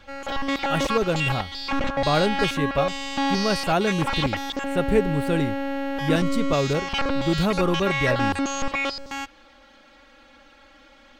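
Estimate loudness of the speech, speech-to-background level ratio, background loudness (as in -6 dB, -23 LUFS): -25.5 LUFS, 1.0 dB, -26.5 LUFS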